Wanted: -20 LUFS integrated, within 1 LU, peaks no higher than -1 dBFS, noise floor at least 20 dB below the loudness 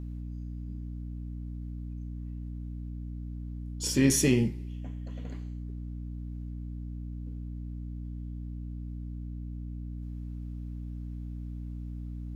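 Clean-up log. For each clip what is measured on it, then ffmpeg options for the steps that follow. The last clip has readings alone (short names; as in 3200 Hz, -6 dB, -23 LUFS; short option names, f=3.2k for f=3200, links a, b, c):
hum 60 Hz; harmonics up to 300 Hz; hum level -35 dBFS; loudness -35.0 LUFS; peak -11.0 dBFS; loudness target -20.0 LUFS
-> -af "bandreject=f=60:t=h:w=4,bandreject=f=120:t=h:w=4,bandreject=f=180:t=h:w=4,bandreject=f=240:t=h:w=4,bandreject=f=300:t=h:w=4"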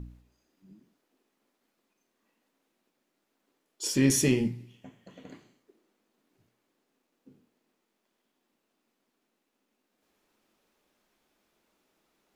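hum none; loudness -26.0 LUFS; peak -11.5 dBFS; loudness target -20.0 LUFS
-> -af "volume=6dB"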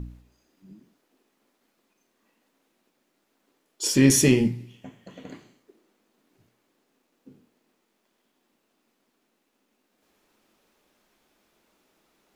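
loudness -20.5 LUFS; peak -5.5 dBFS; noise floor -74 dBFS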